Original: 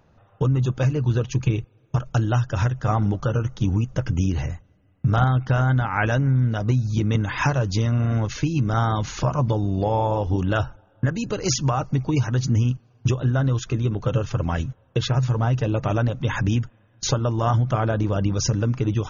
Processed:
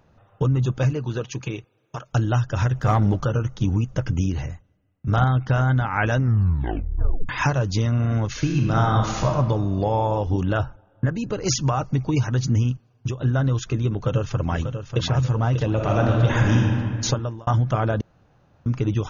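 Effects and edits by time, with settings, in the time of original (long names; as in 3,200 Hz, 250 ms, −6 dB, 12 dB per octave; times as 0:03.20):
0:00.93–0:02.12: high-pass filter 230 Hz → 690 Hz 6 dB per octave
0:02.70–0:03.25: leveller curve on the samples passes 1
0:04.12–0:05.07: fade out, to −13 dB
0:06.16: tape stop 1.13 s
0:08.33–0:09.28: thrown reverb, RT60 1.4 s, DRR 1.5 dB
0:10.52–0:11.47: high-shelf EQ 3,000 Hz −9 dB
0:12.57–0:13.20: fade out, to −8 dB
0:13.91–0:15.03: delay throw 590 ms, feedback 45%, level −8.5 dB
0:15.73–0:16.57: thrown reverb, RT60 2.2 s, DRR −1.5 dB
0:17.07–0:17.47: fade out linear
0:18.01–0:18.66: fill with room tone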